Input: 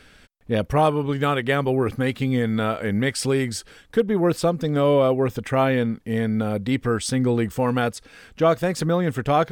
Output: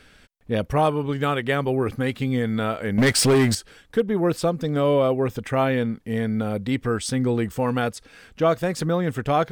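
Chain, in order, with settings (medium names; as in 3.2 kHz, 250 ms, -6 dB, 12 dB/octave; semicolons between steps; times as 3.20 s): 2.98–3.55 s: waveshaping leveller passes 3; trim -1.5 dB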